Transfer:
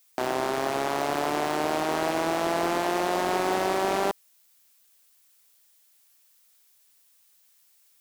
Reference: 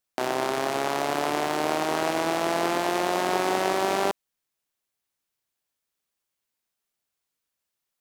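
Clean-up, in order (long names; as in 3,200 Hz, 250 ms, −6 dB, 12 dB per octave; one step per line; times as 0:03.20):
clipped peaks rebuilt −16.5 dBFS
downward expander −54 dBFS, range −21 dB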